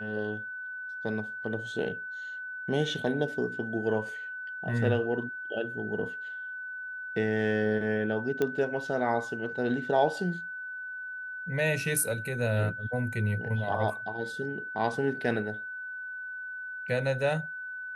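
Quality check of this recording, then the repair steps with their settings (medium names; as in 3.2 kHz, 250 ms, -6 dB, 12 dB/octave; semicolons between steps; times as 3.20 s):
whine 1.5 kHz -36 dBFS
8.42 s: pop -16 dBFS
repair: de-click; band-stop 1.5 kHz, Q 30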